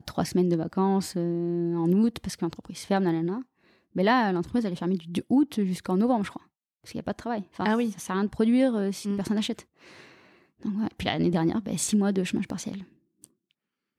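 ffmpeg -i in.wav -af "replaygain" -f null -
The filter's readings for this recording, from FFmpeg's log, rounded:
track_gain = +6.6 dB
track_peak = 0.179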